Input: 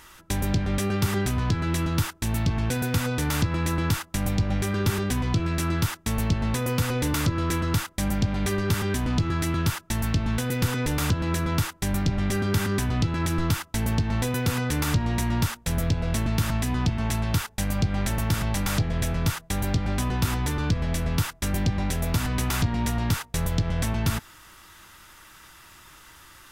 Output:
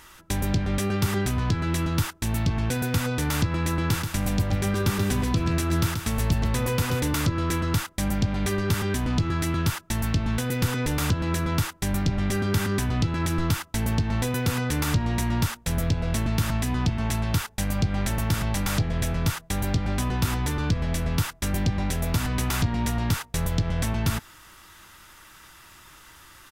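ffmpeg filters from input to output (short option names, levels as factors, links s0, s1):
-filter_complex "[0:a]asplit=3[s0][s1][s2];[s0]afade=t=out:st=3.9:d=0.02[s3];[s1]aecho=1:1:132|264|396|528:0.473|0.132|0.0371|0.0104,afade=t=in:st=3.9:d=0.02,afade=t=out:st=6.99:d=0.02[s4];[s2]afade=t=in:st=6.99:d=0.02[s5];[s3][s4][s5]amix=inputs=3:normalize=0"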